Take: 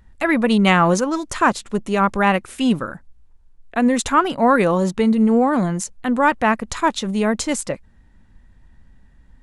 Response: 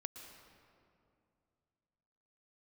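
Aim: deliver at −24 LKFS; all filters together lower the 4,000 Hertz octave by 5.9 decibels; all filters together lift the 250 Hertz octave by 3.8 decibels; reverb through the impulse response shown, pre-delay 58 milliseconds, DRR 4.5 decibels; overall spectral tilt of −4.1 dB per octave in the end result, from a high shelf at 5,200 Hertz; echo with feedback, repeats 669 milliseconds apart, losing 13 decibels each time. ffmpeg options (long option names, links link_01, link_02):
-filter_complex "[0:a]equalizer=frequency=250:width_type=o:gain=4.5,equalizer=frequency=4000:width_type=o:gain=-7,highshelf=frequency=5200:gain=-4,aecho=1:1:669|1338|2007:0.224|0.0493|0.0108,asplit=2[link_01][link_02];[1:a]atrim=start_sample=2205,adelay=58[link_03];[link_02][link_03]afir=irnorm=-1:irlink=0,volume=-1.5dB[link_04];[link_01][link_04]amix=inputs=2:normalize=0,volume=-9dB"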